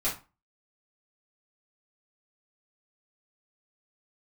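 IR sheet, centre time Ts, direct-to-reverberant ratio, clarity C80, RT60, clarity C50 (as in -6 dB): 24 ms, -7.5 dB, 15.5 dB, 0.30 s, 9.0 dB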